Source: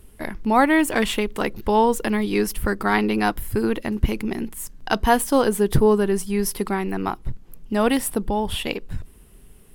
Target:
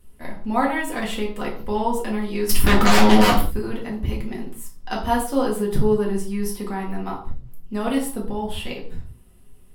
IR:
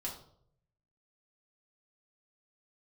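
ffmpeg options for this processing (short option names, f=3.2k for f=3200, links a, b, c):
-filter_complex "[0:a]asettb=1/sr,asplit=3[a][b][c];[a]atrim=end=2.494[d];[b]atrim=start=2.49:end=3.41,asetpts=PTS-STARTPTS,afade=t=in:d=0.004:c=qsin,afade=t=out:st=0.916:d=0.004:c=qsin,aeval=exprs='0.447*sin(PI/2*5.01*val(0)/0.447)':c=same[e];[c]atrim=start=3.406[f];[d][e]acrossfade=d=0.004:c1=hsin:c2=qsin[g];[g][f]acrossfade=d=0.004:c1=qsin:c2=hsin[h];[1:a]atrim=start_sample=2205,afade=t=out:st=0.26:d=0.01,atrim=end_sample=11907[i];[h][i]afir=irnorm=-1:irlink=0,volume=-5dB"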